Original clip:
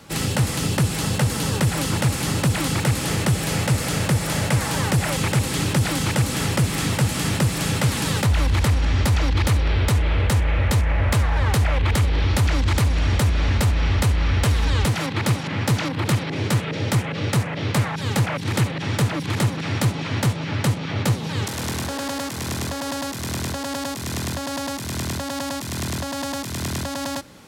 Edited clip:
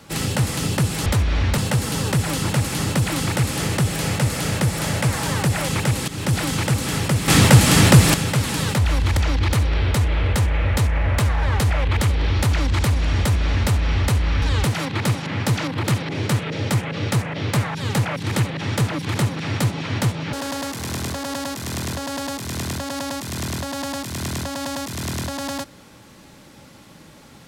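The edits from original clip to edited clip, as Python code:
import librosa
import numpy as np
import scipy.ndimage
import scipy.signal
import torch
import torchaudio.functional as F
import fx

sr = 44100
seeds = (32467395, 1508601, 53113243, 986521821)

y = fx.edit(x, sr, fx.fade_in_from(start_s=5.56, length_s=0.25, floor_db=-14.5),
    fx.clip_gain(start_s=6.76, length_s=0.86, db=9.5),
    fx.cut(start_s=8.65, length_s=0.46),
    fx.duplicate(start_s=13.13, length_s=0.52, to_s=1.06),
    fx.cut(start_s=14.36, length_s=0.27),
    fx.cut(start_s=20.54, length_s=1.36), tone=tone)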